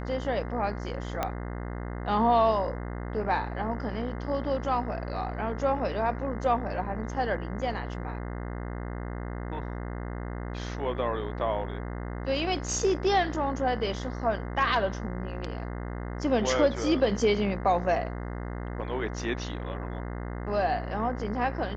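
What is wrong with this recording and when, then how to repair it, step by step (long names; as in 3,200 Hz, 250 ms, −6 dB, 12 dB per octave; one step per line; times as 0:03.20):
mains buzz 60 Hz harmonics 35 −35 dBFS
0:01.23: click −13 dBFS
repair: click removal
hum removal 60 Hz, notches 35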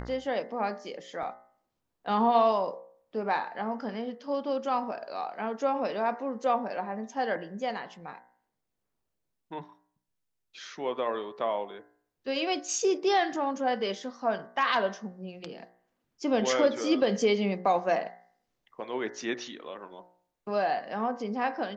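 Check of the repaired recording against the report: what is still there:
0:01.23: click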